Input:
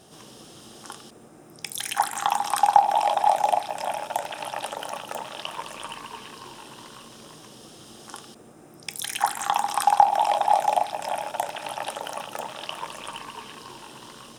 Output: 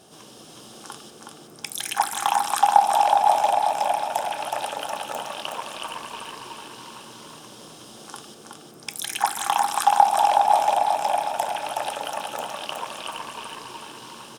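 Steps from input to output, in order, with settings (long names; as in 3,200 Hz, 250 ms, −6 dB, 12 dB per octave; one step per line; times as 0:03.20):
low-shelf EQ 110 Hz −8.5 dB
notch filter 1,900 Hz, Q 14
repeating echo 369 ms, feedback 40%, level −4 dB
level +1 dB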